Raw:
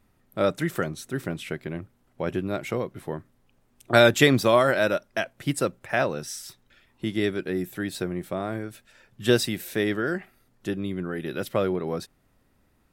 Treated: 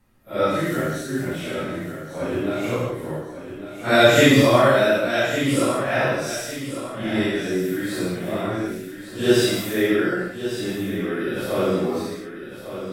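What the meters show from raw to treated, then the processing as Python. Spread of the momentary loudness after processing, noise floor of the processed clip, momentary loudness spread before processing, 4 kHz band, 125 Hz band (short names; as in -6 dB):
17 LU, -37 dBFS, 16 LU, +5.0 dB, +4.0 dB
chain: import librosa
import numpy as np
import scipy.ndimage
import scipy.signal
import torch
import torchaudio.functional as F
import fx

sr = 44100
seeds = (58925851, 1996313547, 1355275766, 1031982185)

y = fx.phase_scramble(x, sr, seeds[0], window_ms=200)
y = fx.echo_feedback(y, sr, ms=1152, feedback_pct=36, wet_db=-10.5)
y = fx.rev_gated(y, sr, seeds[1], gate_ms=190, shape='flat', drr_db=1.5)
y = F.gain(torch.from_numpy(y), 2.0).numpy()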